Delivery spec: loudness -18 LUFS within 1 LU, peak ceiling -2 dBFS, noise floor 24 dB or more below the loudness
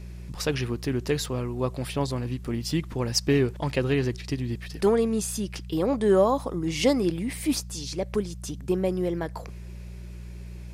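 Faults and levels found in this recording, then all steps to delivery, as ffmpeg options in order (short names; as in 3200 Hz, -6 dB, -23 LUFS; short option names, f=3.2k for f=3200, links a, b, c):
hum 60 Hz; harmonics up to 180 Hz; hum level -36 dBFS; loudness -27.0 LUFS; peak -9.5 dBFS; loudness target -18.0 LUFS
-> -af "bandreject=f=60:t=h:w=4,bandreject=f=120:t=h:w=4,bandreject=f=180:t=h:w=4"
-af "volume=9dB,alimiter=limit=-2dB:level=0:latency=1"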